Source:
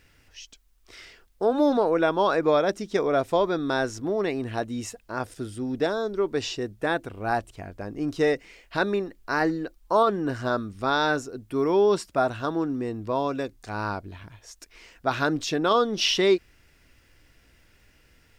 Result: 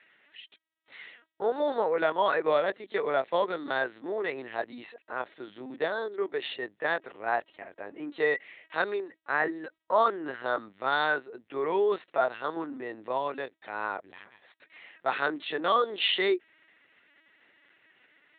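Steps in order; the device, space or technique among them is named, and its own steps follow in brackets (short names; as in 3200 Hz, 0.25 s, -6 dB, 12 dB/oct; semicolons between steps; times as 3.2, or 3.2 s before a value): talking toy (LPC vocoder at 8 kHz pitch kept; HPF 430 Hz 12 dB/oct; bell 1900 Hz +7.5 dB 0.29 oct); gain -2 dB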